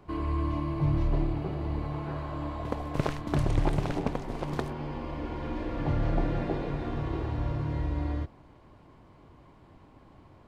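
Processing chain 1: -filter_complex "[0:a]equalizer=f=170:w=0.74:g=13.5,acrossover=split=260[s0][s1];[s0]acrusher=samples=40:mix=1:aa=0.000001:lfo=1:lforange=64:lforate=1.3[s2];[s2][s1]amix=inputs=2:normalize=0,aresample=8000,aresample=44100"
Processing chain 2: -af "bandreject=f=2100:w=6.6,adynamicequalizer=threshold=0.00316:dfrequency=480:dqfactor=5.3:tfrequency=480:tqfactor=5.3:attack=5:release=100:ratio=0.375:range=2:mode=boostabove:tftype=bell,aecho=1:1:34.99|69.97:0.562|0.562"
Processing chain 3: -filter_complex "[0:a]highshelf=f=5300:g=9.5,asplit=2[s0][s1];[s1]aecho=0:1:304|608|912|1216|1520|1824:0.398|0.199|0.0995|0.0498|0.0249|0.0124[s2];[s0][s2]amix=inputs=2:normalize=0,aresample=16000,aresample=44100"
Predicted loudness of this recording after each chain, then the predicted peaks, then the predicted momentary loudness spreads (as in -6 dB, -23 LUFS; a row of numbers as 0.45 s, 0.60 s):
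-23.0 LUFS, -30.0 LUFS, -31.5 LUFS; -3.5 dBFS, -11.0 dBFS, -11.5 dBFS; 9 LU, 8 LU, 7 LU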